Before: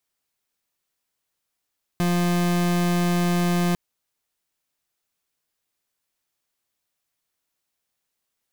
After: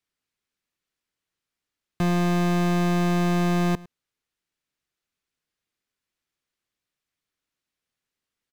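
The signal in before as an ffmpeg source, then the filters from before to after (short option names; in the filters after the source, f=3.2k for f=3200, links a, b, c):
-f lavfi -i "aevalsrc='0.0891*(2*lt(mod(175*t,1),0.37)-1)':d=1.75:s=44100"
-filter_complex "[0:a]aemphasis=mode=reproduction:type=50kf,acrossover=split=590|970[a][b][c];[b]acrusher=bits=6:mix=0:aa=0.000001[d];[a][d][c]amix=inputs=3:normalize=0,aecho=1:1:106:0.0841"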